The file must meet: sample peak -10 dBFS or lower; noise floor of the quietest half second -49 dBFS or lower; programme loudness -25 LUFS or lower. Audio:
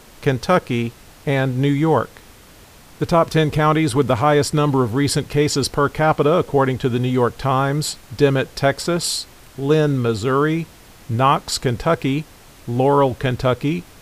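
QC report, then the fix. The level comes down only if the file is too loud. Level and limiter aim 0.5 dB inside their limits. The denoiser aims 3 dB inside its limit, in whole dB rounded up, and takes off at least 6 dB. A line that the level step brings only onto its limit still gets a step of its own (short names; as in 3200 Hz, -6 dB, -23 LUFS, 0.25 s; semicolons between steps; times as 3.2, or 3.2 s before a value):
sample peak -2.5 dBFS: fail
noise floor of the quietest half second -45 dBFS: fail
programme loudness -19.0 LUFS: fail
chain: gain -6.5 dB; limiter -10.5 dBFS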